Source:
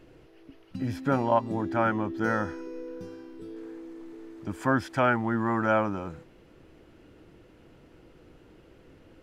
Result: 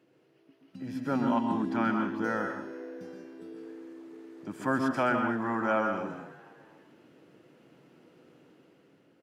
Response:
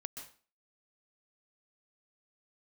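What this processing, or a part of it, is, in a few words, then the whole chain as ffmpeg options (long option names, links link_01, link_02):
far laptop microphone: -filter_complex "[0:a]asettb=1/sr,asplit=3[link_01][link_02][link_03];[link_01]atrim=end=1.154[link_04];[link_02]atrim=start=1.15:end=2.13,asetpts=PTS-STARTPTS,afade=type=in:duration=0.004:curve=qsin,afade=type=out:start_time=0.976:duration=0.004:curve=qsin,equalizer=frequency=250:width_type=o:width=1:gain=9,equalizer=frequency=500:width_type=o:width=1:gain=-10,equalizer=frequency=4000:width_type=o:width=1:gain=6[link_05];[link_03]atrim=start=2.126[link_06];[link_04][link_05]acrossfade=duration=0.004:curve1=hsin:curve2=qsin[link_07];[link_07][link_06]acrossfade=duration=0.004:curve1=qsin:curve2=hsin[link_08];[1:a]atrim=start_sample=2205[link_09];[link_08][link_09]afir=irnorm=-1:irlink=0,highpass=frequency=140:width=0.5412,highpass=frequency=140:width=1.3066,dynaudnorm=framelen=270:gausssize=7:maxgain=7dB,asplit=5[link_10][link_11][link_12][link_13][link_14];[link_11]adelay=240,afreqshift=84,volume=-19dB[link_15];[link_12]adelay=480,afreqshift=168,volume=-25dB[link_16];[link_13]adelay=720,afreqshift=252,volume=-31dB[link_17];[link_14]adelay=960,afreqshift=336,volume=-37.1dB[link_18];[link_10][link_15][link_16][link_17][link_18]amix=inputs=5:normalize=0,volume=-7dB"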